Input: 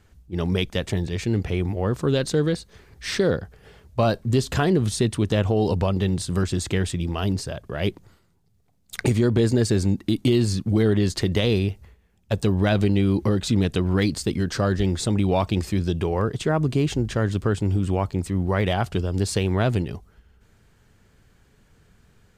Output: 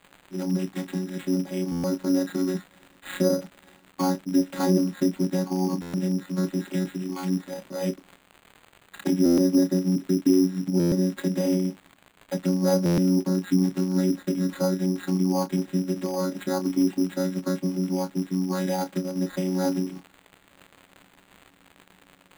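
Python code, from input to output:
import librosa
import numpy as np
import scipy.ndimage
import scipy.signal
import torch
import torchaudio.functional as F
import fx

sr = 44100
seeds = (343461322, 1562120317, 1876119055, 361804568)

y = fx.chord_vocoder(x, sr, chord='bare fifth', root=54)
y = scipy.signal.sosfilt(scipy.signal.butter(2, 5500.0, 'lowpass', fs=sr, output='sos'), y)
y = fx.env_lowpass_down(y, sr, base_hz=1500.0, full_db=-18.5)
y = scipy.signal.sosfilt(scipy.signal.butter(2, 160.0, 'highpass', fs=sr, output='sos'), y)
y = fx.peak_eq(y, sr, hz=3900.0, db=14.0, octaves=0.32)
y = fx.dmg_crackle(y, sr, seeds[0], per_s=590.0, level_db=-41.0)
y = fx.doubler(y, sr, ms=29.0, db=-10.0)
y = np.repeat(y[::8], 8)[:len(y)]
y = fx.buffer_glitch(y, sr, at_s=(1.71, 5.81, 9.25, 10.79, 12.85), block=512, repeats=10)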